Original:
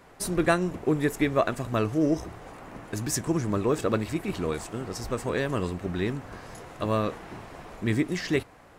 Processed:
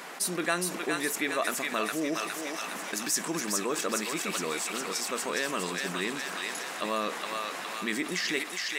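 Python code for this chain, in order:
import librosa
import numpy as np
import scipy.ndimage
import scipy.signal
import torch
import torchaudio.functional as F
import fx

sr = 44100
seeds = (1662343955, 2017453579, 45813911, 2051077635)

p1 = fx.brickwall_highpass(x, sr, low_hz=160.0)
p2 = fx.tilt_shelf(p1, sr, db=-7.0, hz=970.0)
p3 = p2 + fx.echo_thinned(p2, sr, ms=413, feedback_pct=57, hz=1100.0, wet_db=-4, dry=0)
p4 = fx.env_flatten(p3, sr, amount_pct=50)
y = F.gain(torch.from_numpy(p4), -6.5).numpy()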